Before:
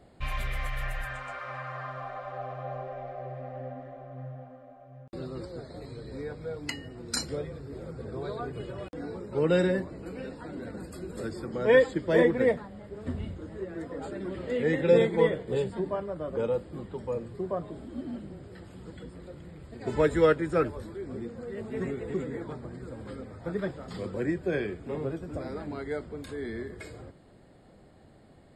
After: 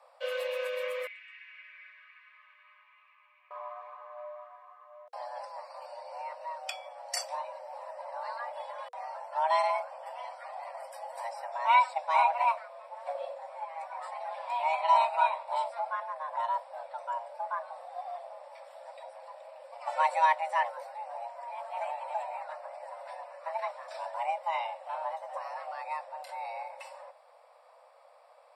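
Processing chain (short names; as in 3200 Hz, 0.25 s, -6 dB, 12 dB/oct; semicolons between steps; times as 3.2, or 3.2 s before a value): frequency shift +470 Hz; 1.07–3.51 ladder band-pass 2600 Hz, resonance 65%; gain -3 dB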